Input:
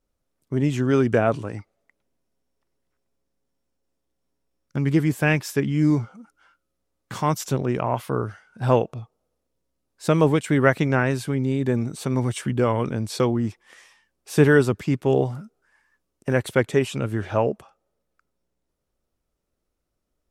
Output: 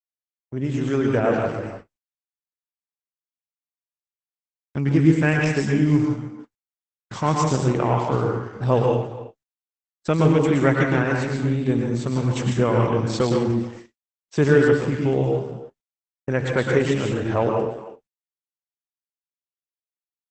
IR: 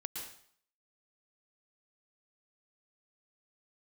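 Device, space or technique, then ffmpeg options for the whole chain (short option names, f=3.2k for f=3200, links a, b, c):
speakerphone in a meeting room: -filter_complex "[0:a]asettb=1/sr,asplit=3[a][b][c];[a]atrim=end=8.644[d];[b]atrim=start=8.64:end=10.07,asetpts=PTS-STARTPTS,afade=t=in:d=0.004:c=qsin,afade=t=out:st=1.426:d=0.004:c=qsin,adynamicequalizer=threshold=0.0141:dfrequency=1500:dqfactor=1:tfrequency=1500:tqfactor=1:attack=5:release=100:ratio=0.375:range=3:mode=cutabove:tftype=bell[e];[c]atrim=start=10.066[f];[d][e]acrossfade=d=0.004:c1=hsin:c2=qsin[g];[g][f]acrossfade=d=0.004:c1=qsin:c2=hsin[h];[1:a]atrim=start_sample=2205[i];[h][i]afir=irnorm=-1:irlink=0,asplit=2[j][k];[k]adelay=300,highpass=300,lowpass=3.4k,asoftclip=type=hard:threshold=-14dB,volume=-15dB[l];[j][l]amix=inputs=2:normalize=0,dynaudnorm=f=500:g=5:m=8dB,agate=range=-56dB:threshold=-35dB:ratio=16:detection=peak,volume=-2dB" -ar 48000 -c:a libopus -b:a 12k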